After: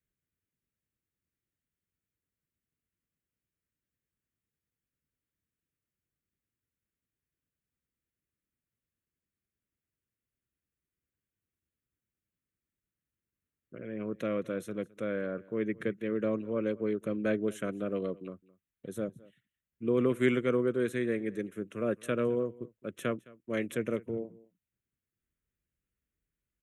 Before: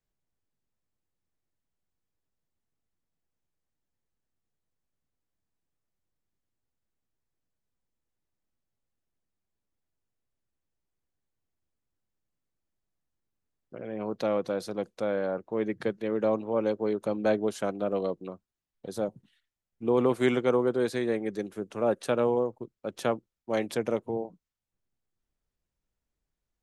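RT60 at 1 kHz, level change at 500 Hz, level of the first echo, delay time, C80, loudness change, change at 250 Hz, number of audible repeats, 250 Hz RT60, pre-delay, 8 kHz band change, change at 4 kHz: no reverb, -4.5 dB, -22.5 dB, 213 ms, no reverb, -3.5 dB, -1.5 dB, 1, no reverb, no reverb, no reading, -6.0 dB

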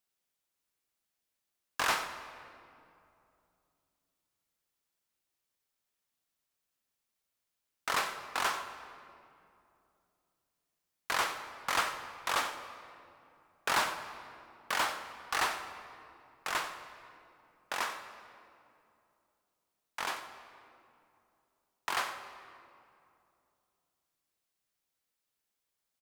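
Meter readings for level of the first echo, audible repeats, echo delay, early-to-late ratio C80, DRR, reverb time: -14.0 dB, 1, 92 ms, 9.0 dB, 7.5 dB, 2.7 s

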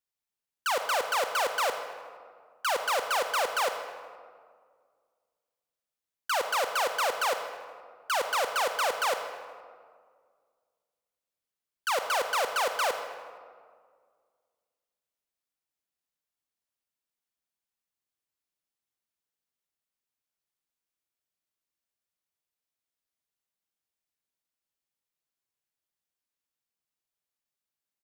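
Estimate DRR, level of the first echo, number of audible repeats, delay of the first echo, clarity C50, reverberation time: 6.5 dB, -15.5 dB, 1, 78 ms, 7.0 dB, 1.9 s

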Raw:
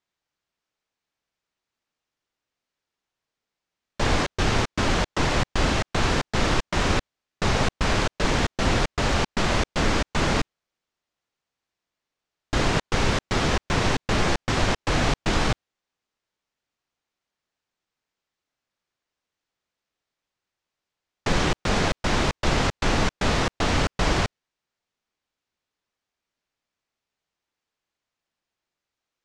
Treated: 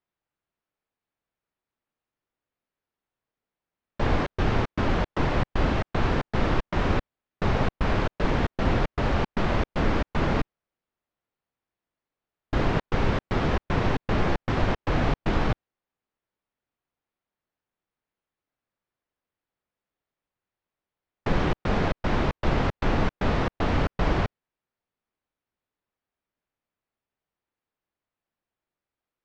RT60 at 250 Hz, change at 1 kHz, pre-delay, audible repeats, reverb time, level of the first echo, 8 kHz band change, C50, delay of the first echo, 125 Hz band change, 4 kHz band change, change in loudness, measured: no reverb, -2.5 dB, no reverb, no echo, no reverb, no echo, -18.0 dB, no reverb, no echo, -0.5 dB, -10.0 dB, -2.5 dB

